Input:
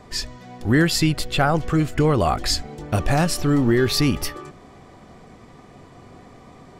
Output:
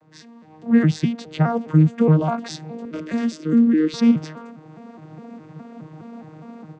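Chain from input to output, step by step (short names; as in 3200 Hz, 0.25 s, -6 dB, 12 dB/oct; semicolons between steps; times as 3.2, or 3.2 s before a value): arpeggiated vocoder bare fifth, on D#3, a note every 0.207 s; AGC gain up to 13.5 dB; 2.85–3.94 fixed phaser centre 330 Hz, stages 4; gain -4.5 dB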